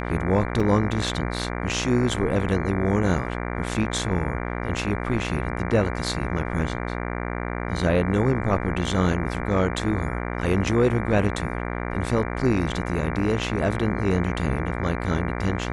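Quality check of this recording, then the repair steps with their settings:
mains buzz 60 Hz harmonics 39 −29 dBFS
0:00.60: drop-out 3.5 ms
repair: hum removal 60 Hz, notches 39
repair the gap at 0:00.60, 3.5 ms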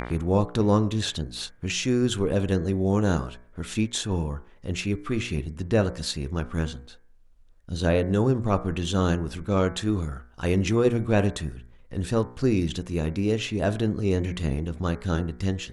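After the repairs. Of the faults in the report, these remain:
none of them is left

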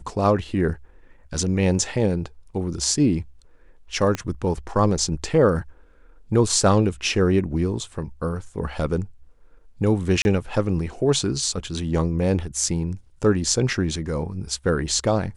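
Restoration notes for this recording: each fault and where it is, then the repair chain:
0:04.15: click −12 dBFS
0:10.22–0:10.25: drop-out 31 ms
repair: click removal
repair the gap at 0:10.22, 31 ms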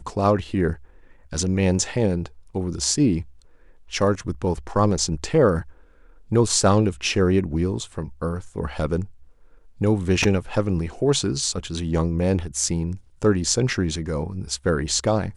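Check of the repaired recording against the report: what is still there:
0:04.15: click

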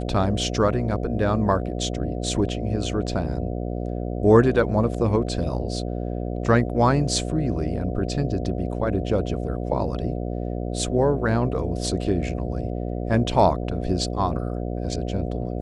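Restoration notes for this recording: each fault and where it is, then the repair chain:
mains buzz 60 Hz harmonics 12 −28 dBFS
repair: hum removal 60 Hz, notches 12

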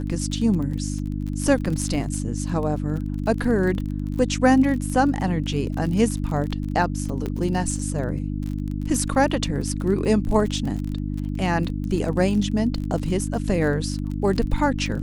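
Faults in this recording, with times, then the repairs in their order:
surface crackle 30 per second −29 dBFS
mains hum 50 Hz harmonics 6 −27 dBFS
0:07.26: click −16 dBFS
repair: click removal
hum removal 50 Hz, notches 6

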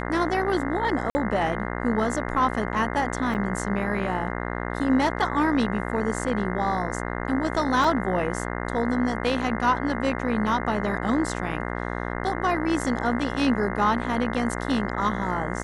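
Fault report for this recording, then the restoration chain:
mains buzz 60 Hz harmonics 35 −30 dBFS
0:01.10–0:01.15: drop-out 50 ms
0:03.34–0:03.35: drop-out 7.6 ms
0:07.84: drop-out 3.5 ms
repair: hum removal 60 Hz, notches 35
repair the gap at 0:01.10, 50 ms
repair the gap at 0:03.34, 7.6 ms
repair the gap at 0:07.84, 3.5 ms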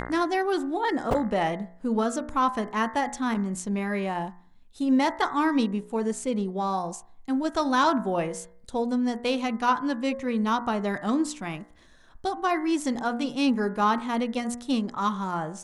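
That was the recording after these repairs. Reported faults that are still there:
none of them is left

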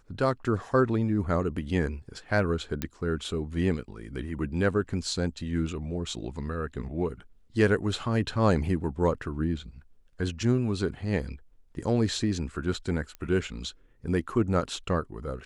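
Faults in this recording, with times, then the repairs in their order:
0:02.82: click −14 dBFS
0:13.15: click −25 dBFS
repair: click removal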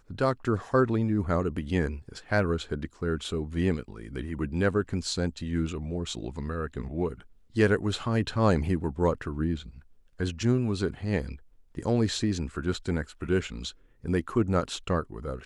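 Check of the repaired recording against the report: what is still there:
none of them is left

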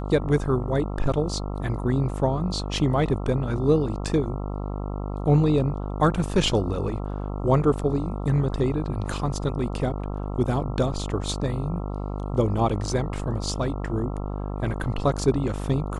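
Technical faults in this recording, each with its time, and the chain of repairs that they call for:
mains buzz 50 Hz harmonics 27 −30 dBFS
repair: hum removal 50 Hz, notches 27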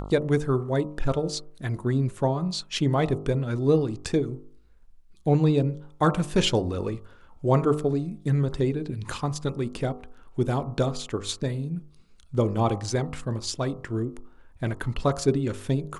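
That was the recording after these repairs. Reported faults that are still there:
none of them is left

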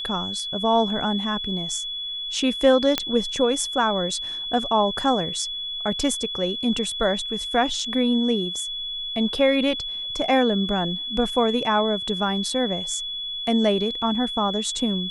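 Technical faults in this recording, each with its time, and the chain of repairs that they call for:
whistle 3,400 Hz −28 dBFS
0:02.98: click −5 dBFS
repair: click removal
notch filter 3,400 Hz, Q 30

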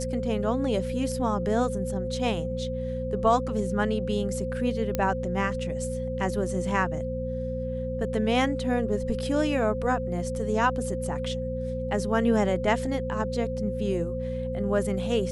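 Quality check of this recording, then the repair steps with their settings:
mains hum 60 Hz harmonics 4 −33 dBFS
whistle 520 Hz −31 dBFS
0:04.95: click −12 dBFS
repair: click removal
hum removal 60 Hz, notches 4
notch filter 520 Hz, Q 30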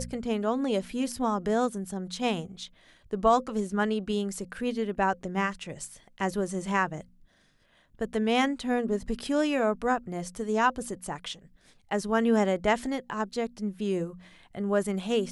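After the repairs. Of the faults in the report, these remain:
none of them is left

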